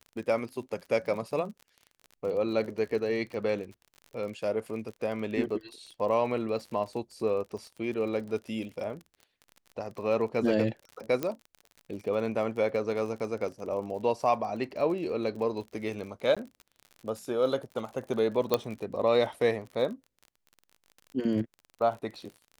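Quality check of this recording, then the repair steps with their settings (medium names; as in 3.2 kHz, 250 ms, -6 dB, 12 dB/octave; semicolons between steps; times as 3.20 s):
crackle 39 per s -38 dBFS
11.23 s: pop -16 dBFS
16.35–16.37 s: dropout 16 ms
18.54 s: pop -11 dBFS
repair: de-click; interpolate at 16.35 s, 16 ms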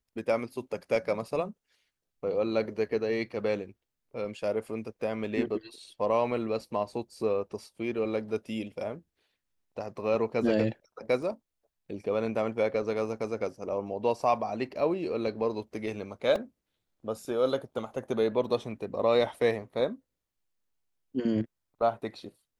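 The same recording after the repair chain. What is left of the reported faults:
11.23 s: pop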